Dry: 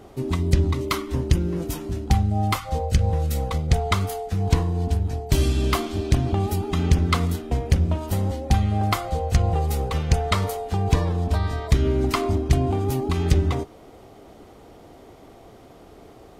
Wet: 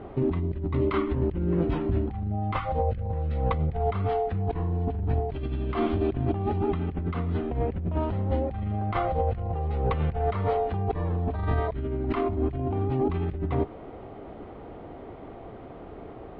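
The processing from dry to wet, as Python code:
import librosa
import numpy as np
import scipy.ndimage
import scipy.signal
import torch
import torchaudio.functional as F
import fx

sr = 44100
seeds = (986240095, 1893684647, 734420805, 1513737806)

y = fx.over_compress(x, sr, threshold_db=-27.0, ratio=-1.0)
y = scipy.signal.sosfilt(scipy.signal.bessel(8, 1900.0, 'lowpass', norm='mag', fs=sr, output='sos'), y)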